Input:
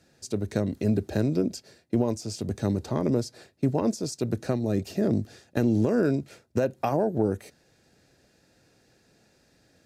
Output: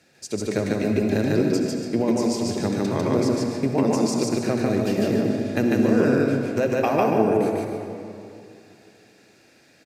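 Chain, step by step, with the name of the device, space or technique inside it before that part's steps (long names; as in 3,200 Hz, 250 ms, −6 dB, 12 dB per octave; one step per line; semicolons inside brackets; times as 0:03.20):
stadium PA (high-pass filter 210 Hz 6 dB per octave; parametric band 2,300 Hz +6.5 dB 0.64 octaves; loudspeakers that aren't time-aligned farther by 51 metres −1 dB, 98 metres −11 dB; convolution reverb RT60 2.6 s, pre-delay 59 ms, DRR 3.5 dB)
level +3 dB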